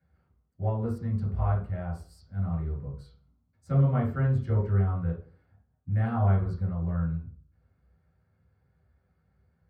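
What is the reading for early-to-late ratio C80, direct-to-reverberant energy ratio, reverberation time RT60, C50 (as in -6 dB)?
9.5 dB, -8.0 dB, 0.40 s, 4.5 dB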